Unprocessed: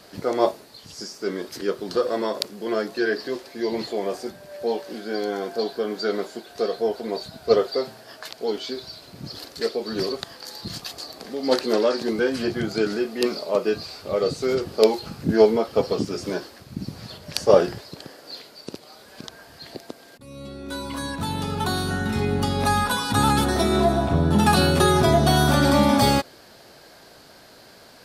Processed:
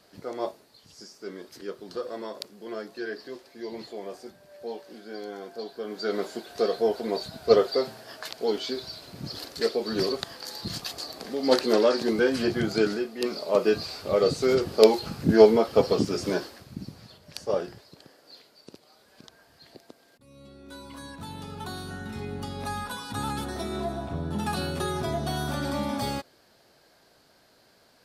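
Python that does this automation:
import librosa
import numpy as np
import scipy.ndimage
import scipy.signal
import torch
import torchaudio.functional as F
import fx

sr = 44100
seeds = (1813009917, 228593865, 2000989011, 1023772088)

y = fx.gain(x, sr, db=fx.line((5.71, -11.0), (6.28, -0.5), (12.85, -0.5), (13.13, -8.0), (13.61, 0.5), (16.42, 0.5), (17.13, -12.0)))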